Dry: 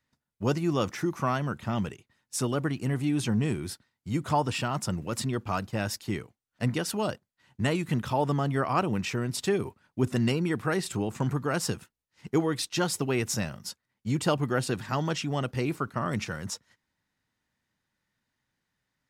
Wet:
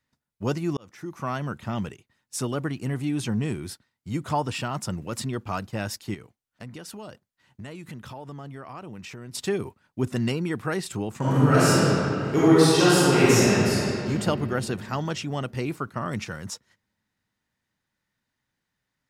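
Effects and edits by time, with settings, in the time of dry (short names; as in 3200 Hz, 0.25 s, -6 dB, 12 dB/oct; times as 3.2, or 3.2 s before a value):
0.77–1.44 fade in
6.14–9.35 compressor 4:1, threshold -38 dBFS
11.18–14.08 reverb throw, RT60 3 s, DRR -11 dB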